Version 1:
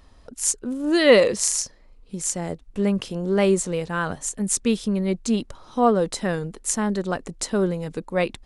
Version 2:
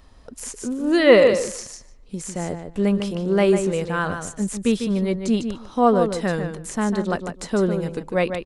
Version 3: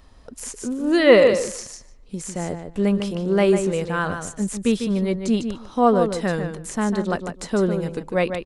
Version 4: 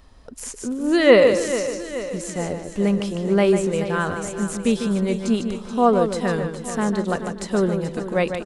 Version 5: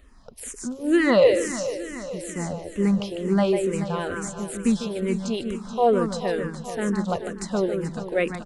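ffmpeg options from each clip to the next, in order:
-filter_complex "[0:a]asplit=2[a][b];[b]adelay=149,lowpass=f=3.4k:p=1,volume=-7.5dB,asplit=2[c][d];[d]adelay=149,lowpass=f=3.4k:p=1,volume=0.16,asplit=2[e][f];[f]adelay=149,lowpass=f=3.4k:p=1,volume=0.16[g];[a][c][e][g]amix=inputs=4:normalize=0,acrossover=split=2900[h][i];[i]acompressor=threshold=-33dB:ratio=4:attack=1:release=60[j];[h][j]amix=inputs=2:normalize=0,volume=1.5dB"
-af anull
-af "aecho=1:1:430|860|1290|1720|2150|2580:0.251|0.146|0.0845|0.049|0.0284|0.0165"
-filter_complex "[0:a]asplit=2[a][b];[b]afreqshift=-2.2[c];[a][c]amix=inputs=2:normalize=1"

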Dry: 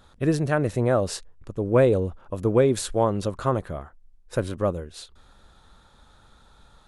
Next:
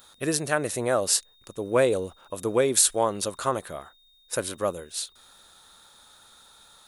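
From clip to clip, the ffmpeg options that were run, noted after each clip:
-af "aemphasis=mode=production:type=riaa,aeval=exprs='val(0)+0.00126*sin(2*PI*3700*n/s)':c=same"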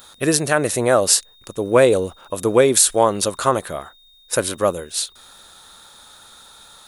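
-af "alimiter=level_in=9.5dB:limit=-1dB:release=50:level=0:latency=1,volume=-1dB"

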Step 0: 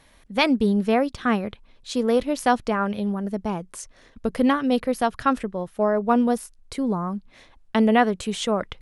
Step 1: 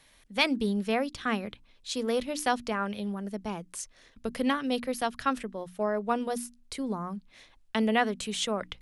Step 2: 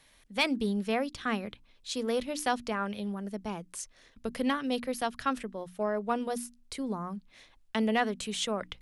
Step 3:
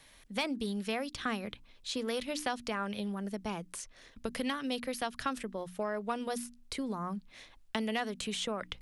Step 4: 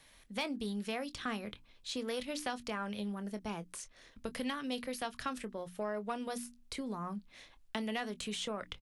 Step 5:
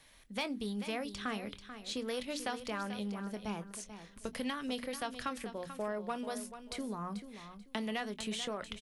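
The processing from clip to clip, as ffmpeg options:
-filter_complex "[0:a]bandreject=f=60:t=h:w=6,bandreject=f=120:t=h:w=6,bandreject=f=180:t=h:w=6,bandreject=f=240:t=h:w=6,bandreject=f=300:t=h:w=6,acrossover=split=300|1900[a][b][c];[c]acontrast=87[d];[a][b][d]amix=inputs=3:normalize=0,volume=-8dB"
-af "asoftclip=type=tanh:threshold=-11.5dB,volume=-1.5dB"
-filter_complex "[0:a]acrossover=split=1300|4000[a][b][c];[a]acompressor=threshold=-37dB:ratio=4[d];[b]acompressor=threshold=-42dB:ratio=4[e];[c]acompressor=threshold=-46dB:ratio=4[f];[d][e][f]amix=inputs=3:normalize=0,volume=3dB"
-filter_complex "[0:a]asplit=2[a][b];[b]asoftclip=type=tanh:threshold=-29.5dB,volume=-9dB[c];[a][c]amix=inputs=2:normalize=0,asplit=2[d][e];[e]adelay=24,volume=-13dB[f];[d][f]amix=inputs=2:normalize=0,volume=-5.5dB"
-af "aecho=1:1:438|876|1314:0.282|0.062|0.0136"

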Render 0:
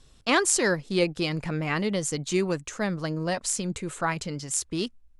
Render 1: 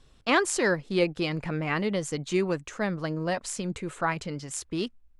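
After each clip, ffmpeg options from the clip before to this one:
-af "bass=f=250:g=-2,treble=f=4k:g=-8"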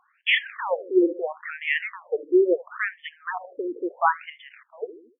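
-filter_complex "[0:a]asplit=2[a][b];[b]adelay=76,lowpass=f=1.2k:p=1,volume=-17dB,asplit=2[c][d];[d]adelay=76,lowpass=f=1.2k:p=1,volume=0.44,asplit=2[e][f];[f]adelay=76,lowpass=f=1.2k:p=1,volume=0.44,asplit=2[g][h];[h]adelay=76,lowpass=f=1.2k:p=1,volume=0.44[i];[a][c][e][g][i]amix=inputs=5:normalize=0,afftfilt=real='re*between(b*sr/1024,360*pow(2500/360,0.5+0.5*sin(2*PI*0.74*pts/sr))/1.41,360*pow(2500/360,0.5+0.5*sin(2*PI*0.74*pts/sr))*1.41)':imag='im*between(b*sr/1024,360*pow(2500/360,0.5+0.5*sin(2*PI*0.74*pts/sr))/1.41,360*pow(2500/360,0.5+0.5*sin(2*PI*0.74*pts/sr))*1.41)':win_size=1024:overlap=0.75,volume=9dB"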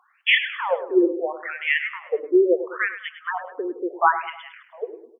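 -filter_complex "[0:a]highpass=310,asplit=2[a][b];[b]aecho=0:1:103|206|309|412:0.251|0.105|0.0443|0.0186[c];[a][c]amix=inputs=2:normalize=0,volume=3dB"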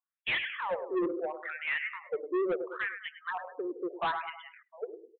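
-af "afftdn=nr=33:nf=-41,aresample=8000,asoftclip=type=tanh:threshold=-19.5dB,aresample=44100,volume=-6.5dB"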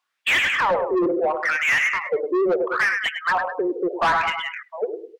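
-filter_complex "[0:a]equalizer=f=3.2k:w=0.5:g=6.5,asplit=2[a][b];[b]highpass=f=720:p=1,volume=20dB,asoftclip=type=tanh:threshold=-16.5dB[c];[a][c]amix=inputs=2:normalize=0,lowpass=f=2.1k:p=1,volume=-6dB,volume=5.5dB"

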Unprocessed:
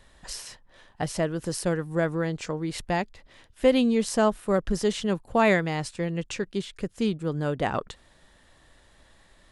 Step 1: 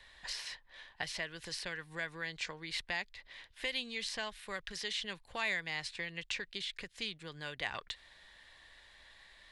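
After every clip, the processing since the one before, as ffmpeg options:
-filter_complex "[0:a]bandreject=f=1.3k:w=10,acrossover=split=110|1700|5300[a][b][c][d];[a]acompressor=threshold=-46dB:ratio=4[e];[b]acompressor=threshold=-37dB:ratio=4[f];[c]acompressor=threshold=-40dB:ratio=4[g];[d]acompressor=threshold=-45dB:ratio=4[h];[e][f][g][h]amix=inputs=4:normalize=0,equalizer=f=125:t=o:w=1:g=-4,equalizer=f=250:t=o:w=1:g=-5,equalizer=f=1k:t=o:w=1:g=4,equalizer=f=2k:t=o:w=1:g=11,equalizer=f=4k:t=o:w=1:g=11,volume=-9dB"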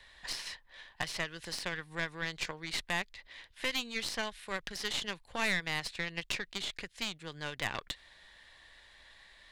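-af "aeval=exprs='0.0944*(cos(1*acos(clip(val(0)/0.0944,-1,1)))-cos(1*PI/2))+0.00422*(cos(5*acos(clip(val(0)/0.0944,-1,1)))-cos(5*PI/2))+0.0188*(cos(6*acos(clip(val(0)/0.0944,-1,1)))-cos(6*PI/2))+0.00422*(cos(7*acos(clip(val(0)/0.0944,-1,1)))-cos(7*PI/2))+0.00422*(cos(8*acos(clip(val(0)/0.0944,-1,1)))-cos(8*PI/2))':c=same,volume=2dB"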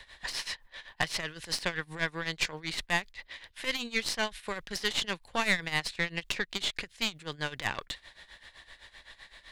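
-filter_complex "[0:a]tremolo=f=7.8:d=0.82,asplit=2[a][b];[b]asoftclip=type=tanh:threshold=-29dB,volume=-4dB[c];[a][c]amix=inputs=2:normalize=0,volume=4.5dB"

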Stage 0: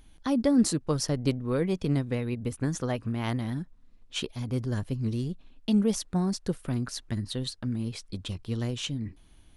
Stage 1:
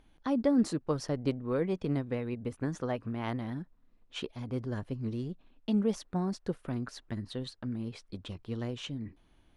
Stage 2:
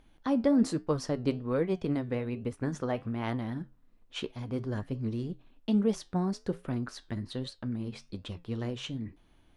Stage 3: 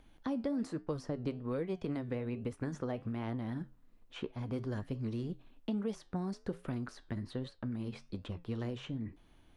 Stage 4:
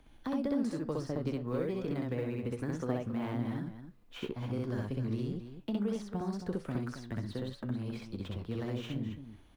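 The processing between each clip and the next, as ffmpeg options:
-af "lowpass=f=1.5k:p=1,lowshelf=f=210:g=-9.5"
-af "flanger=delay=7.9:depth=3.9:regen=-78:speed=1.2:shape=triangular,volume=6dB"
-filter_complex "[0:a]acrossover=split=620|2200[a][b][c];[a]acompressor=threshold=-35dB:ratio=4[d];[b]acompressor=threshold=-48dB:ratio=4[e];[c]acompressor=threshold=-58dB:ratio=4[f];[d][e][f]amix=inputs=3:normalize=0"
-filter_complex "[0:a]acrossover=split=110|1200[a][b][c];[c]acrusher=bits=4:mode=log:mix=0:aa=0.000001[d];[a][b][d]amix=inputs=3:normalize=0,aecho=1:1:64.14|271.1:0.891|0.316"

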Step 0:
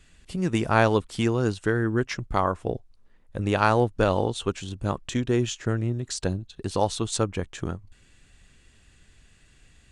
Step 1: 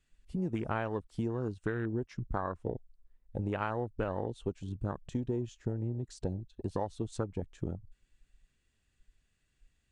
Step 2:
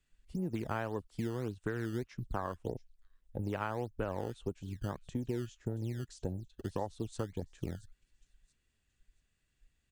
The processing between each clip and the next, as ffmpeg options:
-af "afwtdn=0.0282,acompressor=threshold=-27dB:ratio=6,volume=-3dB"
-filter_complex "[0:a]acrossover=split=260|3000[a][b][c];[a]acrusher=samples=16:mix=1:aa=0.000001:lfo=1:lforange=25.6:lforate=1.7[d];[c]aecho=1:1:677|1354|2031:0.224|0.0627|0.0176[e];[d][b][e]amix=inputs=3:normalize=0,volume=-2.5dB"

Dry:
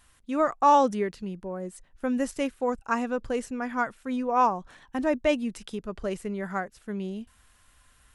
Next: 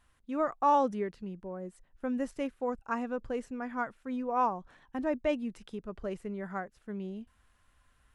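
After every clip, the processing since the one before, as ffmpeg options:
-af "highshelf=f=3.4k:g=-10.5,volume=-5.5dB"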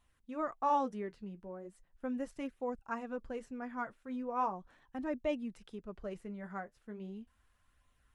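-af "flanger=delay=0.3:depth=9.1:regen=-53:speed=0.38:shape=sinusoidal,volume=-1.5dB"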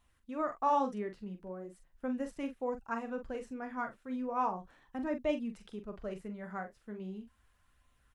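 -filter_complex "[0:a]asplit=2[a][b];[b]adelay=43,volume=-8.5dB[c];[a][c]amix=inputs=2:normalize=0,volume=1.5dB"

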